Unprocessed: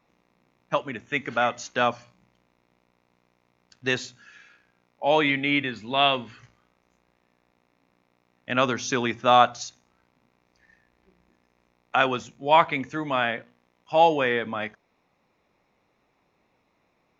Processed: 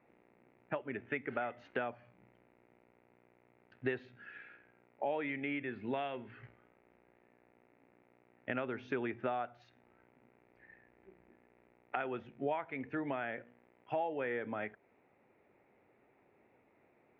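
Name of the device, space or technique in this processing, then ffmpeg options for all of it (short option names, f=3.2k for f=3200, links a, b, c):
bass amplifier: -af "acompressor=threshold=-35dB:ratio=6,highpass=68,equalizer=f=70:t=q:w=4:g=-7,equalizer=f=170:t=q:w=4:g=-7,equalizer=f=390:t=q:w=4:g=5,equalizer=f=1.1k:t=q:w=4:g=-9,lowpass=f=2.3k:w=0.5412,lowpass=f=2.3k:w=1.3066,volume=1dB"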